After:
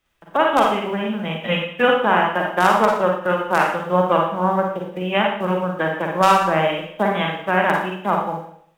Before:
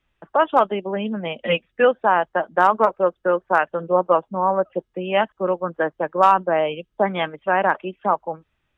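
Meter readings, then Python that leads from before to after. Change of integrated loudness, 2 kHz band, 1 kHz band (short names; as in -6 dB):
+1.5 dB, +4.0 dB, +1.0 dB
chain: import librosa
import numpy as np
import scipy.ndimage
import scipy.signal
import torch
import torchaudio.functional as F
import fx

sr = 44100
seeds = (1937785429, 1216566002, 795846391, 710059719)

y = fx.envelope_flatten(x, sr, power=0.6)
y = fx.rev_schroeder(y, sr, rt60_s=0.64, comb_ms=38, drr_db=0.0)
y = fx.end_taper(y, sr, db_per_s=160.0)
y = y * 10.0 ** (-1.5 / 20.0)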